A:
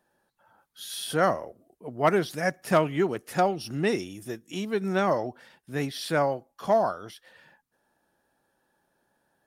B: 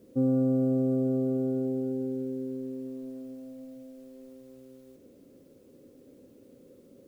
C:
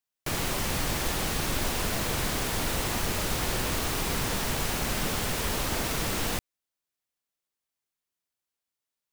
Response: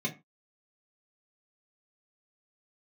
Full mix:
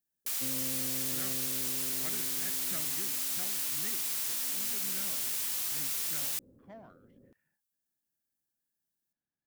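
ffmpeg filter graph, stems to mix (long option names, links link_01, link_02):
-filter_complex "[0:a]equalizer=frequency=500:width_type=o:width=1:gain=-10,equalizer=frequency=1000:width_type=o:width=1:gain=-11,equalizer=frequency=2000:width_type=o:width=1:gain=8,equalizer=frequency=4000:width_type=o:width=1:gain=-6,adynamicsmooth=sensitivity=3.5:basefreq=1300,volume=-19dB[link_01];[1:a]asubboost=boost=3:cutoff=190,lowpass=1100,adelay=250,volume=-6.5dB,afade=type=in:start_time=4.28:duration=0.27:silence=0.281838[link_02];[2:a]aderivative,volume=-1dB[link_03];[link_01][link_02][link_03]amix=inputs=3:normalize=0"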